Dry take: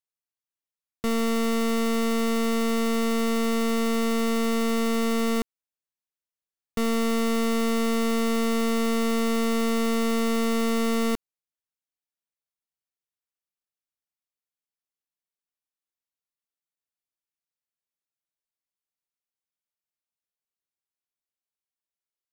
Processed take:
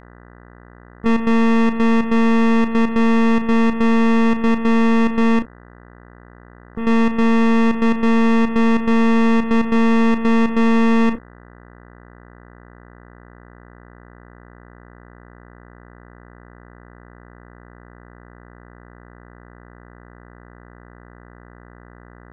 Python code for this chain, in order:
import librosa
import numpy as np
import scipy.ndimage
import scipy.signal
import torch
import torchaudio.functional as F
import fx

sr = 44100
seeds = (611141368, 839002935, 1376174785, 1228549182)

y = fx.envelope_sharpen(x, sr, power=1.5)
y = scipy.signal.sosfilt(scipy.signal.butter(4, 1400.0, 'lowpass', fs=sr, output='sos'), y)
y = fx.peak_eq(y, sr, hz=450.0, db=-13.0, octaves=0.65)
y = fx.leveller(y, sr, passes=5)
y = fx.spec_topn(y, sr, count=32)
y = fx.step_gate(y, sr, bpm=142, pattern='.xx.xxxxx.x.xxxx', floor_db=-12.0, edge_ms=4.5)
y = fx.leveller(y, sr, passes=1)
y = fx.dmg_buzz(y, sr, base_hz=60.0, harmonics=33, level_db=-52.0, tilt_db=-3, odd_only=False)
y = fx.doubler(y, sr, ms=34.0, db=-11.5)
y = F.gain(torch.from_numpy(y), 7.5).numpy()